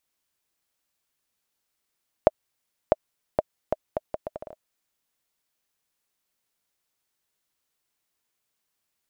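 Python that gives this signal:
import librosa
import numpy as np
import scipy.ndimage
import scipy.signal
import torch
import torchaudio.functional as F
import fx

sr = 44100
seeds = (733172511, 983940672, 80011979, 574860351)

y = fx.bouncing_ball(sr, first_gap_s=0.65, ratio=0.72, hz=622.0, decay_ms=30.0, level_db=-2.0)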